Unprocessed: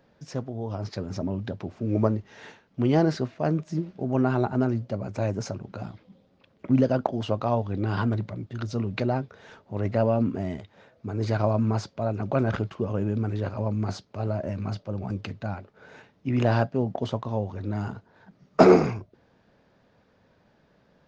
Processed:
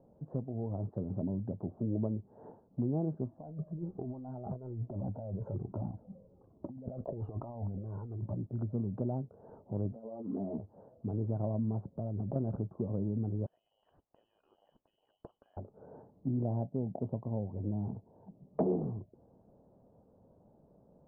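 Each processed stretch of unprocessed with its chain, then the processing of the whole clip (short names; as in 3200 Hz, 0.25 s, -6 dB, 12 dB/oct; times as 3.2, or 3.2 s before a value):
3.26–8.34 negative-ratio compressor -34 dBFS + cascading flanger falling 1.2 Hz
9.92–10.58 HPF 250 Hz + negative-ratio compressor -35 dBFS + ensemble effect
11.84–12.36 low shelf 320 Hz +8.5 dB + compressor 4:1, threshold -30 dBFS
13.46–15.57 air absorption 420 m + inverted band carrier 3100 Hz + compressor 10:1, threshold -31 dBFS
16.36–18.82 bell 1400 Hz -11 dB 0.47 oct + Doppler distortion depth 0.16 ms
whole clip: inverse Chebyshev low-pass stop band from 2100 Hz, stop band 50 dB; dynamic EQ 170 Hz, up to +7 dB, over -37 dBFS, Q 0.82; compressor 3:1, threshold -35 dBFS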